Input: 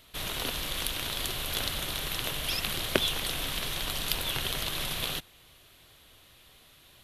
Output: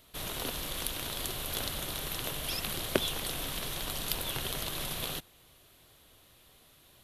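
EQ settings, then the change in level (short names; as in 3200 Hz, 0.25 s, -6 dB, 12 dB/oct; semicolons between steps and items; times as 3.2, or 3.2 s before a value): low shelf 120 Hz -4 dB; bell 2600 Hz -6 dB 2.4 oct; 0.0 dB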